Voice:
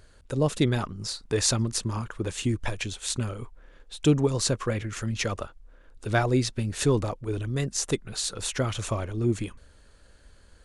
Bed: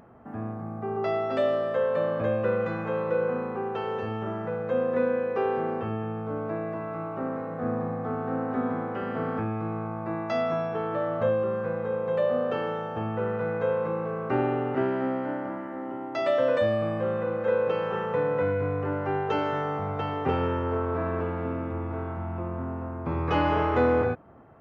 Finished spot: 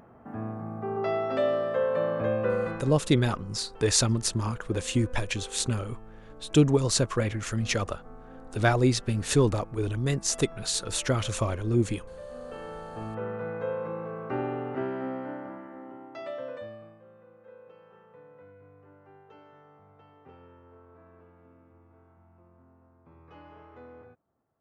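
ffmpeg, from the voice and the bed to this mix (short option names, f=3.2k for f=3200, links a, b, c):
-filter_complex "[0:a]adelay=2500,volume=1dB[a];[1:a]volume=12dB,afade=t=out:st=2.63:d=0.33:silence=0.133352,afade=t=in:st=12.27:d=0.85:silence=0.223872,afade=t=out:st=15.2:d=1.8:silence=0.0891251[b];[a][b]amix=inputs=2:normalize=0"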